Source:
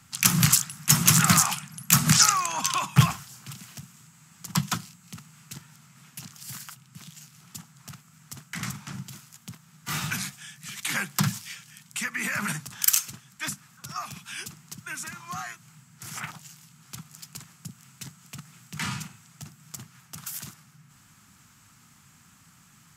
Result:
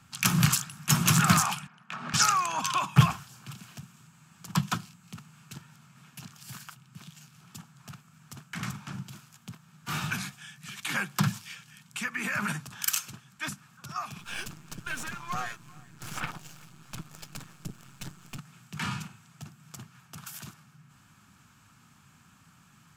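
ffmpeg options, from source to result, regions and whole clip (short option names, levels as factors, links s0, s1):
-filter_complex "[0:a]asettb=1/sr,asplit=3[s0][s1][s2];[s0]atrim=end=1.674[s3];[s1]atrim=start=1.67:end=2.14,asetpts=PTS-STARTPTS,afade=t=in:d=0.004:c=qsin,afade=t=out:st=0.466:d=0.004:c=qsin,highpass=390,lowpass=2200,acompressor=threshold=0.0251:ratio=10:attack=3.2:release=140:knee=1:detection=peak[s4];[s2]atrim=start=2.136[s5];[s3][s4]acrossfade=d=0.004:c1=hsin:c2=qsin[s6];[s6][s5]acrossfade=d=0.004:c1=qsin:c2=hsin,asettb=1/sr,asplit=3[s7][s8][s9];[s7]atrim=end=14.194[s10];[s8]atrim=start=14.19:end=18.38,asetpts=PTS-STARTPTS,afade=t=in:d=0.004:c=qsin,afade=t=out:st=4.186:d=0.004:c=qsin,aeval=exprs='if(lt(val(0),0),0.251*val(0),val(0))':c=same,acontrast=53,aecho=1:1:388:0.0668,atrim=end_sample=184779[s11];[s9]atrim=start=18.376[s12];[s10][s11]acrossfade=d=0.004:c1=hsin:c2=qsin[s13];[s13][s12]acrossfade=d=0.004:c1=qsin:c2=hsin,bass=f=250:g=-1,treble=f=4000:g=-8,bandreject=f=2000:w=8"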